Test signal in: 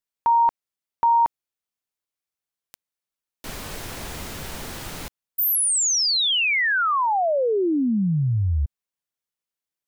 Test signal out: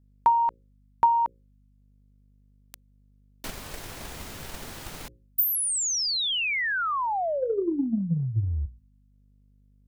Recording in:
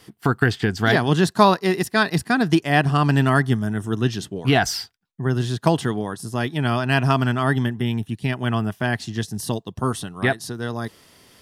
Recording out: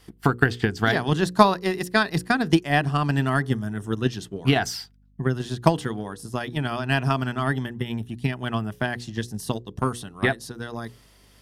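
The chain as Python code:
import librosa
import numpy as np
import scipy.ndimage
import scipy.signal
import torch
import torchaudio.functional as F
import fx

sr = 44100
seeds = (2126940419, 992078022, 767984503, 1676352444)

y = fx.hum_notches(x, sr, base_hz=60, count=9)
y = fx.add_hum(y, sr, base_hz=50, snr_db=31)
y = fx.transient(y, sr, attack_db=8, sustain_db=1)
y = y * librosa.db_to_amplitude(-6.0)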